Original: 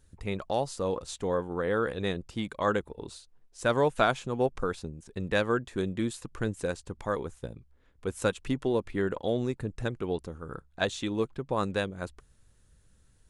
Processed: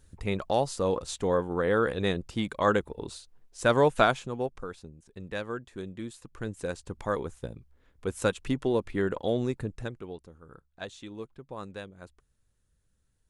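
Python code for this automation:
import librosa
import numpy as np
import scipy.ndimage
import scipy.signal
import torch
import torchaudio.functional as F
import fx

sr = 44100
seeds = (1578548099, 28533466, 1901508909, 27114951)

y = fx.gain(x, sr, db=fx.line((4.0, 3.0), (4.63, -8.0), (6.15, -8.0), (6.94, 1.0), (9.62, 1.0), (10.18, -11.0)))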